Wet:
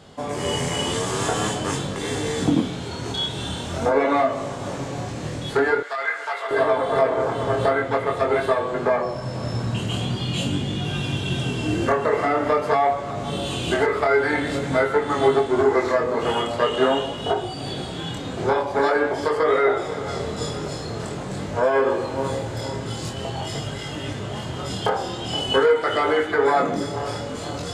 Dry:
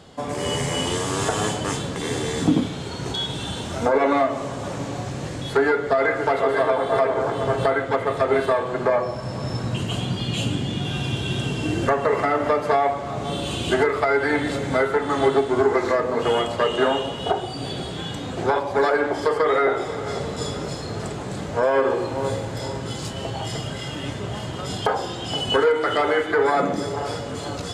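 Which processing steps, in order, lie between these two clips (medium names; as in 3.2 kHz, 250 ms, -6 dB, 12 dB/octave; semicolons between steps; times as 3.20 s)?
5.80–6.51 s: high-pass 1.2 kHz 12 dB/octave; chorus 0.46 Hz, delay 19.5 ms, depth 7 ms; trim +3 dB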